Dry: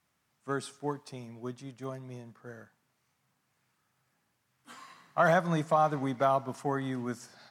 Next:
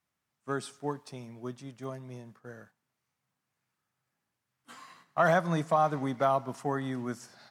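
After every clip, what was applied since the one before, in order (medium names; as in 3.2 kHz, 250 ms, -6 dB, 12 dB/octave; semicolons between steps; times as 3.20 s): gate -56 dBFS, range -8 dB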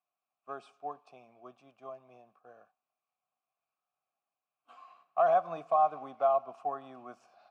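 vowel filter a; trim +5 dB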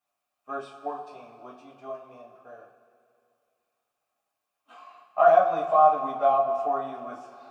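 reverberation, pre-delay 3 ms, DRR -6.5 dB; trim +1.5 dB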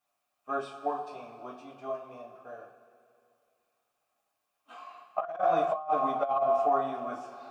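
compressor with a negative ratio -24 dBFS, ratio -0.5; trim -2 dB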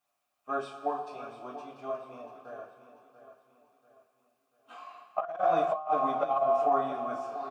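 feedback delay 689 ms, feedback 41%, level -13 dB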